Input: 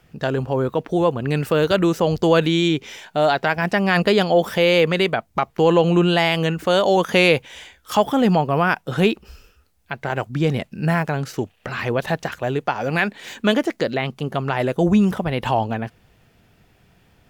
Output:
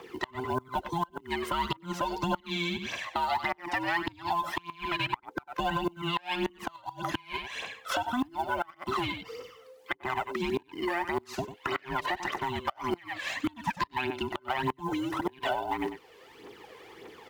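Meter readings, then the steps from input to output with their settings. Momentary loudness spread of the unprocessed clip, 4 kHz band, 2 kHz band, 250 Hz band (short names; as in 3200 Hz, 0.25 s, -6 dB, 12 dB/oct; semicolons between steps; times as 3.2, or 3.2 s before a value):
9 LU, -10.5 dB, -10.0 dB, -14.5 dB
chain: band inversion scrambler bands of 500 Hz; HPF 510 Hz 6 dB/oct; high shelf 5900 Hz -11 dB; on a send: echo 95 ms -13 dB; on the sum: compressor 4:1, threshold -28 dBFS, peak gain reduction 13 dB; added harmonics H 3 -24 dB, 5 -26 dB, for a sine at -14 dBFS; phaser 1.7 Hz, delay 2 ms, feedback 60%; flipped gate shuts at -17 dBFS, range -27 dB; short-mantissa float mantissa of 4-bit; three-band squash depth 40%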